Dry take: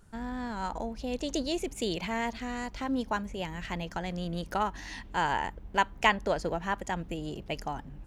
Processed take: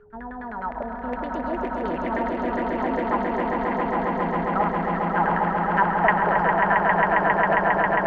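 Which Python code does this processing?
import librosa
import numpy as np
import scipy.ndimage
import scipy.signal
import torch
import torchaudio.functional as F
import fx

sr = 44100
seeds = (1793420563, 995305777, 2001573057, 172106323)

y = fx.filter_lfo_lowpass(x, sr, shape='saw_down', hz=9.7, low_hz=520.0, high_hz=2000.0, q=4.6)
y = y + 10.0 ** (-48.0 / 20.0) * np.sin(2.0 * np.pi * 420.0 * np.arange(len(y)) / sr)
y = fx.echo_swell(y, sr, ms=135, loudest=8, wet_db=-4.5)
y = F.gain(torch.from_numpy(y), -2.5).numpy()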